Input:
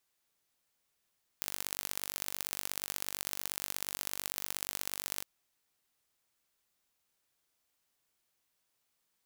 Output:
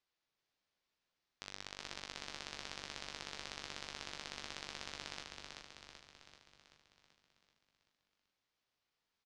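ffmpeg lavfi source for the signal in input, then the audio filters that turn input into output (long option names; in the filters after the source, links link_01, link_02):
-f lavfi -i "aevalsrc='0.447*eq(mod(n,907),0)*(0.5+0.5*eq(mod(n,2721),0))':duration=3.81:sample_rate=44100"
-filter_complex "[0:a]lowpass=frequency=5400:width=0.5412,lowpass=frequency=5400:width=1.3066,flanger=delay=8.3:depth=3.1:regen=84:speed=0.46:shape=sinusoidal,asplit=9[link_01][link_02][link_03][link_04][link_05][link_06][link_07][link_08][link_09];[link_02]adelay=384,afreqshift=-37,volume=-4dB[link_10];[link_03]adelay=768,afreqshift=-74,volume=-9dB[link_11];[link_04]adelay=1152,afreqshift=-111,volume=-14.1dB[link_12];[link_05]adelay=1536,afreqshift=-148,volume=-19.1dB[link_13];[link_06]adelay=1920,afreqshift=-185,volume=-24.1dB[link_14];[link_07]adelay=2304,afreqshift=-222,volume=-29.2dB[link_15];[link_08]adelay=2688,afreqshift=-259,volume=-34.2dB[link_16];[link_09]adelay=3072,afreqshift=-296,volume=-39.3dB[link_17];[link_01][link_10][link_11][link_12][link_13][link_14][link_15][link_16][link_17]amix=inputs=9:normalize=0"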